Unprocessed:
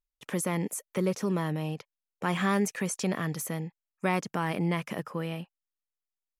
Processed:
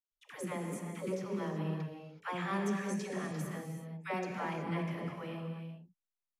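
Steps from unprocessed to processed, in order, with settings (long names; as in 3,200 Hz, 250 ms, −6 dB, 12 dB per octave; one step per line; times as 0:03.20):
low-pass filter 3,500 Hz 6 dB per octave
all-pass dispersion lows, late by 122 ms, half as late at 480 Hz
tape wow and flutter 18 cents
reverb whose tail is shaped and stops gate 400 ms flat, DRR 2.5 dB
level −8 dB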